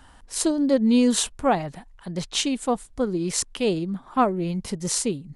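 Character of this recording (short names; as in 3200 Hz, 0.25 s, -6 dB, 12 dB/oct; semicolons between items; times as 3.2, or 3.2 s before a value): noise floor -52 dBFS; spectral tilt -4.0 dB/oct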